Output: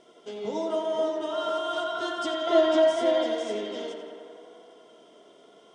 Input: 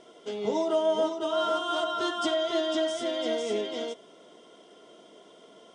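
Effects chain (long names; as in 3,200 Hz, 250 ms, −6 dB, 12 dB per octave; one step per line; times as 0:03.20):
0:02.47–0:03.24: parametric band 680 Hz +12.5 dB 2.8 octaves
tape delay 87 ms, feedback 87%, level −6 dB, low-pass 3,900 Hz
level −3.5 dB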